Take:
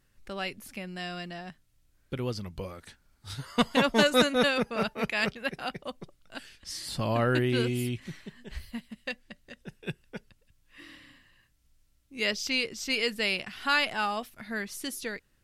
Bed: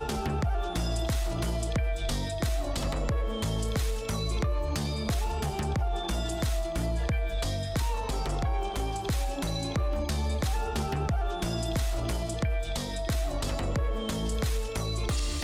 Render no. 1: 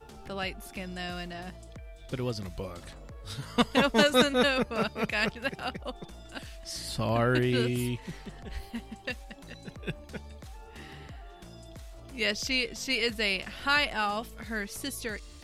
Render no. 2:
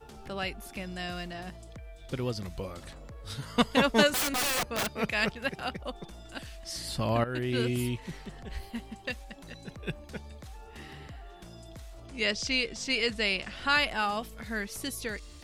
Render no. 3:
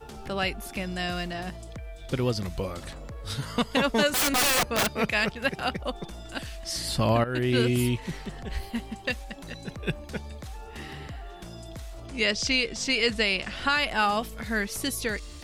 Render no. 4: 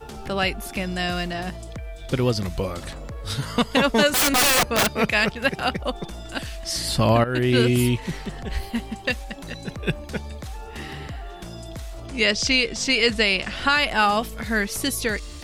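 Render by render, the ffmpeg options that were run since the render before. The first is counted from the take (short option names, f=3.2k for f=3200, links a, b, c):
-filter_complex "[1:a]volume=-17.5dB[a];[0:a][a]amix=inputs=2:normalize=0"
-filter_complex "[0:a]asettb=1/sr,asplit=3[a][b][c];[a]atrim=end=4.134[d];[b]atrim=start=4.13:end=4.87,asetpts=PTS-STARTPTS,afade=t=in:d=0.004:c=qsin,afade=t=out:st=0.736:d=0.004:c=qsin,aeval=exprs='(mod(15*val(0)+1,2)-1)/15':c=same[e];[c]atrim=start=4.866[f];[d][e]acrossfade=d=0.004:c1=hsin:c2=qsin[g];[g][f]acrossfade=d=0.004:c1=qsin:c2=hsin,asettb=1/sr,asplit=3[h][i][j];[h]atrim=end=12.074[k];[i]atrim=start=12.07:end=13.75,asetpts=PTS-STARTPTS,afade=t=in:d=0.004:c=qsin,afade=t=out:st=1.676:d=0.004:c=qsin,lowpass=f=9.4k:w=0.5412,lowpass=f=9.4k:w=1.3066[l];[j]atrim=start=13.746[m];[k][l]acrossfade=d=0.004:c1=hsin:c2=qsin[n];[n][m]acrossfade=d=0.004:c1=qsin:c2=hsin,asplit=2[o][p];[o]atrim=end=7.24,asetpts=PTS-STARTPTS,afade=t=out:st=7.236:d=0.004:c=hsin:silence=0.211349[q];[p]atrim=start=7.24,asetpts=PTS-STARTPTS,afade=t=in:d=0.46:silence=0.211349[r];[q][r]concat=n=2:v=0:a=1"
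-af "acontrast=53,alimiter=limit=-13dB:level=0:latency=1:release=227"
-af "volume=5dB"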